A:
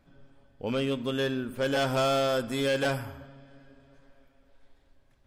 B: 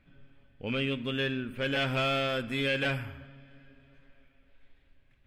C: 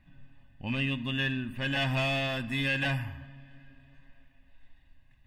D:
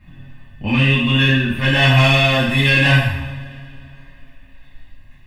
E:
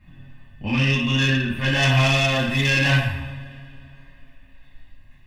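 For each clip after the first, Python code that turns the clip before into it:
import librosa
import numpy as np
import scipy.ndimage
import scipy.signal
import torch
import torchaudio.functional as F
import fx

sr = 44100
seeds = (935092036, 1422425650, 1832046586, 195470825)

y1 = fx.curve_eq(x, sr, hz=(150.0, 900.0, 2500.0, 5600.0), db=(0, -8, 7, -11))
y2 = y1 + 0.96 * np.pad(y1, (int(1.1 * sr / 1000.0), 0))[:len(y1)]
y2 = F.gain(torch.from_numpy(y2), -1.5).numpy()
y3 = fx.rev_double_slope(y2, sr, seeds[0], early_s=0.65, late_s=2.2, knee_db=-18, drr_db=-10.0)
y3 = F.gain(torch.from_numpy(y3), 6.0).numpy()
y4 = fx.self_delay(y3, sr, depth_ms=0.067)
y4 = F.gain(torch.from_numpy(y4), -5.0).numpy()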